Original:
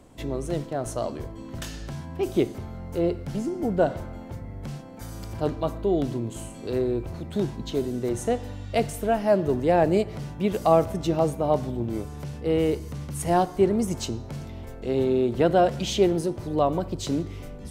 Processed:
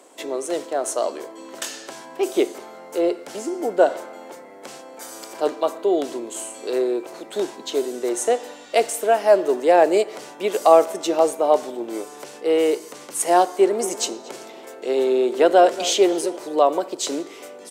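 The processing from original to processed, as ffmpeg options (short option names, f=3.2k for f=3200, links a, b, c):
-filter_complex "[0:a]asplit=3[a][b][c];[a]afade=t=out:st=13.72:d=0.02[d];[b]asplit=2[e][f];[f]adelay=233,lowpass=f=2.5k:p=1,volume=-15.5dB,asplit=2[g][h];[h]adelay=233,lowpass=f=2.5k:p=1,volume=0.5,asplit=2[i][j];[j]adelay=233,lowpass=f=2.5k:p=1,volume=0.5,asplit=2[k][l];[l]adelay=233,lowpass=f=2.5k:p=1,volume=0.5,asplit=2[m][n];[n]adelay=233,lowpass=f=2.5k:p=1,volume=0.5[o];[e][g][i][k][m][o]amix=inputs=6:normalize=0,afade=t=in:st=13.72:d=0.02,afade=t=out:st=16.36:d=0.02[p];[c]afade=t=in:st=16.36:d=0.02[q];[d][p][q]amix=inputs=3:normalize=0,highpass=f=360:w=0.5412,highpass=f=360:w=1.3066,equalizer=f=7.8k:t=o:w=0.76:g=6,volume=6.5dB"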